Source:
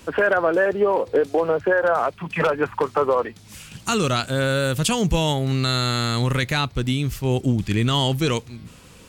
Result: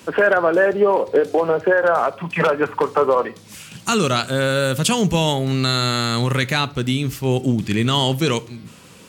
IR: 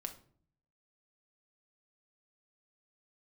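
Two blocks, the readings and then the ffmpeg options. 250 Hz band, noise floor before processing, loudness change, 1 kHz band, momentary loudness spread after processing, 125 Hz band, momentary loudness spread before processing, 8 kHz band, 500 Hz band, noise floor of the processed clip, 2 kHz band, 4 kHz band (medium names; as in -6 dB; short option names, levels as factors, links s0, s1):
+3.0 dB, -46 dBFS, +2.5 dB, +3.0 dB, 6 LU, +0.5 dB, 5 LU, +3.0 dB, +3.0 dB, -44 dBFS, +3.0 dB, +3.0 dB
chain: -filter_complex "[0:a]highpass=120,asplit=2[s0][s1];[1:a]atrim=start_sample=2205[s2];[s1][s2]afir=irnorm=-1:irlink=0,volume=0.596[s3];[s0][s3]amix=inputs=2:normalize=0"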